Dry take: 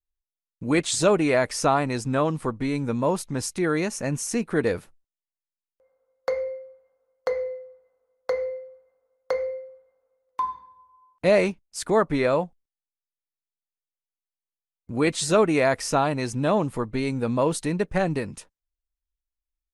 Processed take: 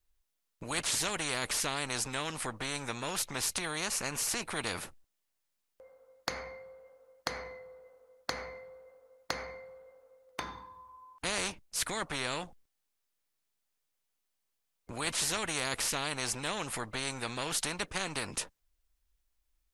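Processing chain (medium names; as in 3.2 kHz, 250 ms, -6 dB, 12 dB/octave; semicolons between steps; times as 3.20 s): spectrum-flattening compressor 4:1; trim -2.5 dB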